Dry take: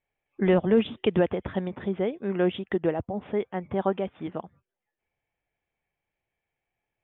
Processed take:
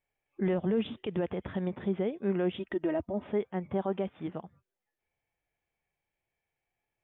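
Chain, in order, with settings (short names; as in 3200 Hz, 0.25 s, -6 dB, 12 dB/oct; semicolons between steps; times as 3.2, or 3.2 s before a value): 2.59–3.27 comb 3.2 ms, depth 61%; limiter -20.5 dBFS, peak gain reduction 9.5 dB; harmonic-percussive split percussive -6 dB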